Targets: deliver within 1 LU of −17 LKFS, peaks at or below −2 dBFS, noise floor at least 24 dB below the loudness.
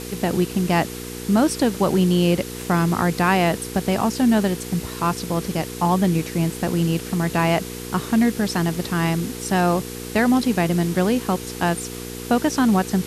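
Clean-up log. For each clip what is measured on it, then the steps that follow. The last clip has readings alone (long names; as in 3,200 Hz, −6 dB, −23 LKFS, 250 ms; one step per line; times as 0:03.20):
mains hum 60 Hz; hum harmonics up to 480 Hz; level of the hum −33 dBFS; background noise floor −33 dBFS; target noise floor −45 dBFS; integrated loudness −21.0 LKFS; sample peak −6.0 dBFS; target loudness −17.0 LKFS
→ hum removal 60 Hz, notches 8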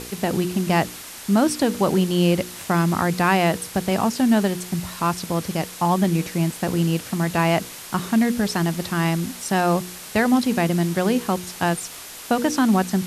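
mains hum none found; background noise floor −38 dBFS; target noise floor −46 dBFS
→ broadband denoise 8 dB, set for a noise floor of −38 dBFS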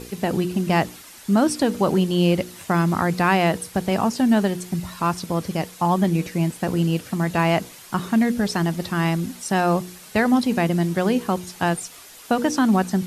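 background noise floor −44 dBFS; target noise floor −46 dBFS
→ broadband denoise 6 dB, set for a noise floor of −44 dBFS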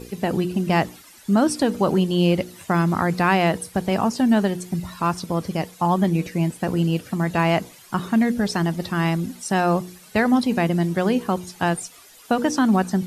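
background noise floor −48 dBFS; integrated loudness −22.0 LKFS; sample peak −5.5 dBFS; target loudness −17.0 LKFS
→ level +5 dB
brickwall limiter −2 dBFS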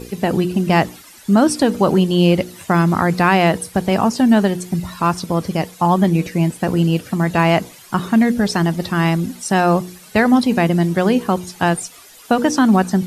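integrated loudness −17.0 LKFS; sample peak −2.0 dBFS; background noise floor −43 dBFS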